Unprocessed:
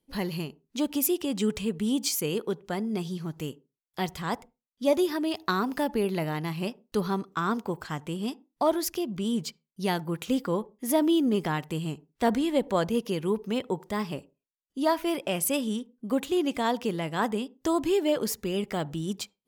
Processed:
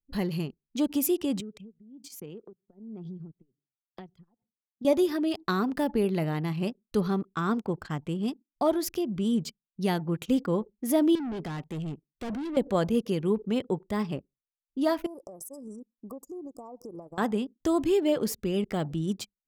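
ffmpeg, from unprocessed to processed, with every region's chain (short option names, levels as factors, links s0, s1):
-filter_complex "[0:a]asettb=1/sr,asplit=3[s0][s1][s2];[s0]atrim=end=1.404[s3];[s1]atrim=start=1.4:end=4.85,asetpts=PTS-STARTPTS,afade=t=in:d=0.004:c=qsin,afade=t=out:st=3.446:d=0.004:c=qsin,highpass=f=110:w=0.5412,highpass=f=110:w=1.3066,acompressor=threshold=0.0141:ratio=10:attack=3.2:release=140:knee=1:detection=peak,tremolo=f=1.2:d=0.74[s4];[s2]atrim=start=4.846[s5];[s3][s4]acrossfade=d=0.004:c1=hsin:c2=qsin[s6];[s6][s5]acrossfade=d=0.004:c1=qsin:c2=hsin,asettb=1/sr,asplit=3[s7][s8][s9];[s7]atrim=end=11.154[s10];[s8]atrim=start=11.15:end=12.57,asetpts=PTS-STARTPTS,afade=t=in:d=0.004:c=qsin,afade=t=out:st=1.416:d=0.004:c=qsin,lowshelf=f=75:g=-10,volume=44.7,asoftclip=hard,volume=0.0224[s11];[s9]atrim=start=12.566[s12];[s10][s11]acrossfade=d=0.004:c1=hsin:c2=qsin[s13];[s13][s12]acrossfade=d=0.004:c1=qsin:c2=hsin,asettb=1/sr,asplit=3[s14][s15][s16];[s14]atrim=end=15.064[s17];[s15]atrim=start=15.06:end=17.18,asetpts=PTS-STARTPTS,afade=t=in:d=0.004:c=qsin,afade=t=out:st=2.116:d=0.004:c=qsin,bass=f=250:g=-14,treble=f=4000:g=7,acompressor=threshold=0.0141:ratio=8:attack=3.2:release=140:knee=1:detection=peak,asuperstop=centerf=2500:order=20:qfactor=0.67[s18];[s16]atrim=start=17.176[s19];[s17][s18]acrossfade=d=0.004:c1=hsin:c2=qsin[s20];[s20][s19]acrossfade=d=0.004:c1=qsin:c2=hsin,bandreject=f=960:w=15,anlmdn=0.158,lowshelf=f=460:g=6.5,volume=0.708"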